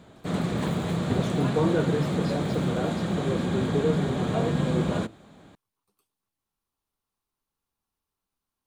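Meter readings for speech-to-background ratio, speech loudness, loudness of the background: -2.5 dB, -30.5 LUFS, -28.0 LUFS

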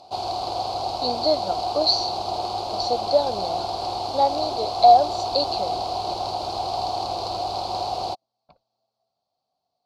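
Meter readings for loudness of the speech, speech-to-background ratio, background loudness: -22.5 LUFS, 5.0 dB, -27.5 LUFS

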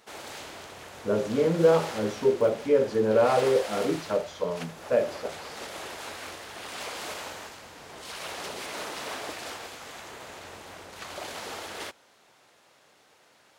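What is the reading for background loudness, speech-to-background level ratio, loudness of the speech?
-38.5 LUFS, 13.0 dB, -25.5 LUFS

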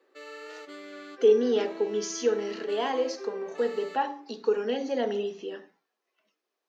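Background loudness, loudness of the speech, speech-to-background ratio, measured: -42.5 LUFS, -28.0 LUFS, 14.5 dB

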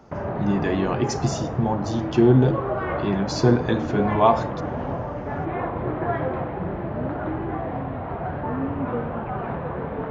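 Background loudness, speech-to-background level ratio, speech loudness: -28.5 LUFS, 6.0 dB, -22.5 LUFS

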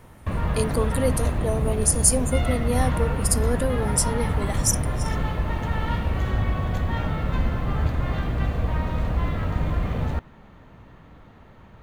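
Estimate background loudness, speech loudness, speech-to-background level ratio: -26.0 LUFS, -25.0 LUFS, 1.0 dB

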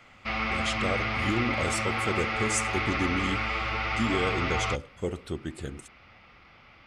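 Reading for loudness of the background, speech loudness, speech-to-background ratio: -28.5 LUFS, -32.5 LUFS, -4.0 dB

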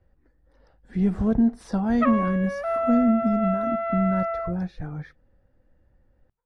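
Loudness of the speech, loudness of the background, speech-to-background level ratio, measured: -25.0 LUFS, -27.5 LUFS, 2.5 dB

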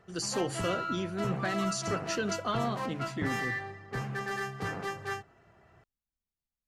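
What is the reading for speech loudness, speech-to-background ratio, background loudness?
-34.5 LUFS, 1.5 dB, -36.0 LUFS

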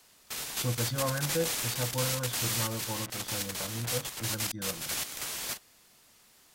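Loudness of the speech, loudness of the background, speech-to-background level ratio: -36.5 LUFS, -32.5 LUFS, -4.0 dB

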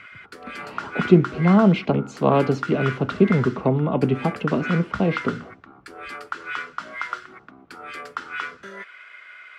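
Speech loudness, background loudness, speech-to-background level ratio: -21.0 LUFS, -33.0 LUFS, 12.0 dB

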